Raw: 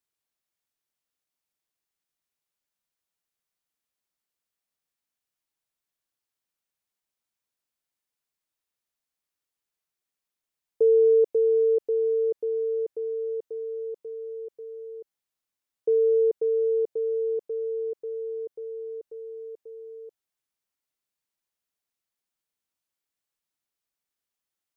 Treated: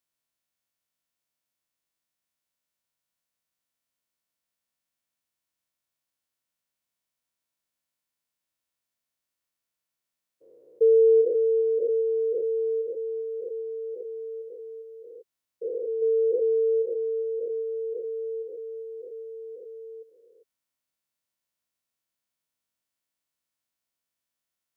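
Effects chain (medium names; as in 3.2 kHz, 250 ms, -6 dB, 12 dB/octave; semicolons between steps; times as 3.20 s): spectrogram pixelated in time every 400 ms; comb of notches 410 Hz; trim +4 dB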